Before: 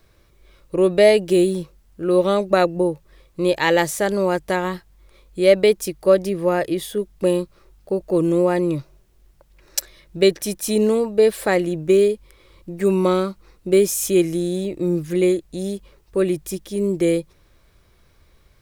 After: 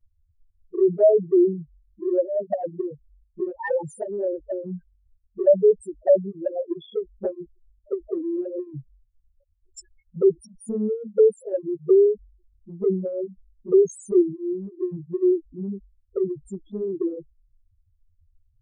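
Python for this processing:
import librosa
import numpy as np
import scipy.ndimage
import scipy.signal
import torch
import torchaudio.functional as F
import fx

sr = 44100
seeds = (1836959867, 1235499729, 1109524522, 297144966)

y = fx.spec_topn(x, sr, count=2)
y = fx.env_flanger(y, sr, rest_ms=10.7, full_db=-14.0)
y = y * 10.0 ** (1.0 / 20.0)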